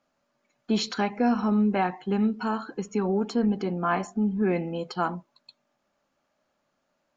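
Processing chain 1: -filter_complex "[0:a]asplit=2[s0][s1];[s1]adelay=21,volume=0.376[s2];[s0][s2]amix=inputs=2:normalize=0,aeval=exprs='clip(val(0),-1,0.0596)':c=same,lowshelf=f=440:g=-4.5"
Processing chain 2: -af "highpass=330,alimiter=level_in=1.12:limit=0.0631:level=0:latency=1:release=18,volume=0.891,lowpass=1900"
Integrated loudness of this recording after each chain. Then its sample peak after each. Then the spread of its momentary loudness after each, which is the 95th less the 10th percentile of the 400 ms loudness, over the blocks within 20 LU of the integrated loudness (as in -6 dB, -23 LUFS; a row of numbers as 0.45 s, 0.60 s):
-30.0 LUFS, -35.0 LUFS; -13.5 dBFS, -25.0 dBFS; 5 LU, 6 LU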